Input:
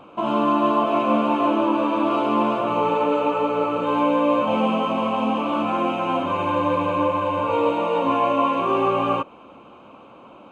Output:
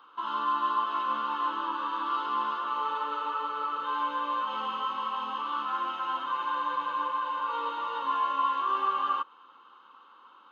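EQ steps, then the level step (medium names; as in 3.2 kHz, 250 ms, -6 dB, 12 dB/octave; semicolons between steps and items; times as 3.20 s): high-pass 1 kHz 12 dB/octave; treble shelf 5 kHz -6 dB; static phaser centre 2.4 kHz, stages 6; 0.0 dB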